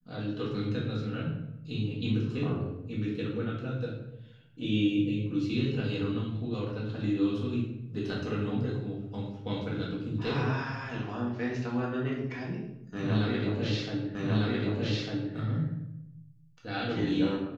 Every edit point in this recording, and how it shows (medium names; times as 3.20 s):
14.15 s: repeat of the last 1.2 s